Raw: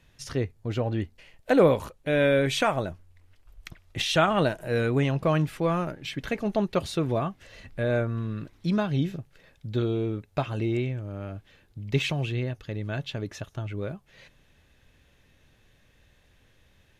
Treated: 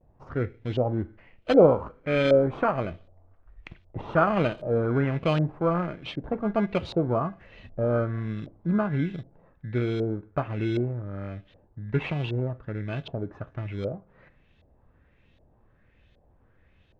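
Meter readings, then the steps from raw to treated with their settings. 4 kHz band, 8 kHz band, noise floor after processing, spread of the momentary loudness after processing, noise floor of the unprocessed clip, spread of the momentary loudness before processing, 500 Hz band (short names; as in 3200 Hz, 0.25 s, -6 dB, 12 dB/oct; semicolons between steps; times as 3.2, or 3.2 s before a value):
-7.5 dB, under -15 dB, -62 dBFS, 15 LU, -62 dBFS, 14 LU, +1.5 dB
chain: bell 2700 Hz -5 dB 2.2 oct; two-slope reverb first 0.41 s, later 1.8 s, from -26 dB, DRR 15 dB; vibrato 0.35 Hz 28 cents; in parallel at -5.5 dB: sample-and-hold 24×; on the sum: LFO low-pass saw up 1.3 Hz 620–3700 Hz; gain -3.5 dB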